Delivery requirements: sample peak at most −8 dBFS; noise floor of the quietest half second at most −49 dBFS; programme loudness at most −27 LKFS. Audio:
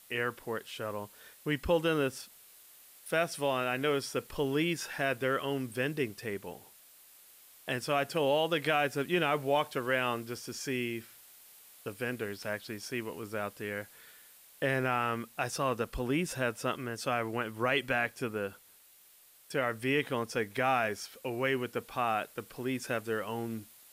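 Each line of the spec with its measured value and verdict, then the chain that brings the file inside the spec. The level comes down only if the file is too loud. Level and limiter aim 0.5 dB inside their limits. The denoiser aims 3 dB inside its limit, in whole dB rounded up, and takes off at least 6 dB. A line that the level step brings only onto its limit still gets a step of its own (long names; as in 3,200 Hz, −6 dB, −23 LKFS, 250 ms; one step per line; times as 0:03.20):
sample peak −15.5 dBFS: in spec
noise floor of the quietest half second −60 dBFS: in spec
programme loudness −33.0 LKFS: in spec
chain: no processing needed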